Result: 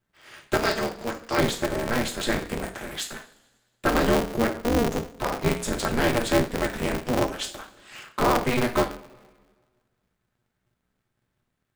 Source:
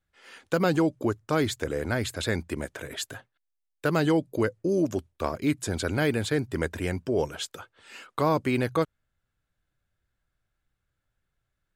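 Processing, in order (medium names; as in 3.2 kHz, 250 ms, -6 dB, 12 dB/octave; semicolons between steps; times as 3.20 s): 0.57–1.38 s: cabinet simulation 500–9300 Hz, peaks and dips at 950 Hz -7 dB, 2.1 kHz +5 dB, 4.8 kHz +10 dB; two-slope reverb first 0.37 s, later 1.6 s, from -20 dB, DRR 0.5 dB; polarity switched at an audio rate 120 Hz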